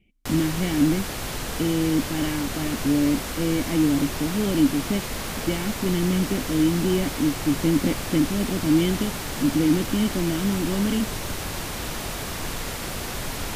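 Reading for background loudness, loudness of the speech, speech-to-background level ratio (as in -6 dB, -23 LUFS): -30.0 LUFS, -24.5 LUFS, 5.5 dB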